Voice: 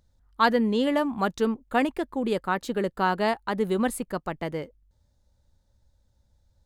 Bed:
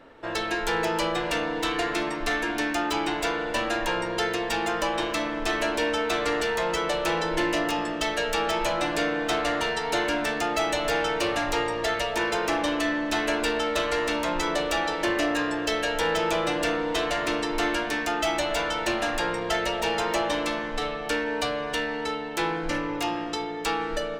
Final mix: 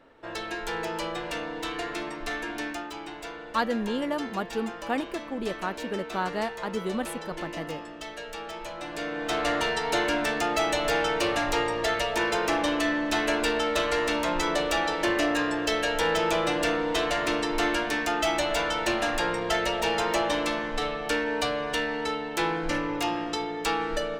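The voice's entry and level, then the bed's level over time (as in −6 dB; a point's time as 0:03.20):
3.15 s, −5.5 dB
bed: 0:02.68 −6 dB
0:02.92 −12 dB
0:08.75 −12 dB
0:09.48 0 dB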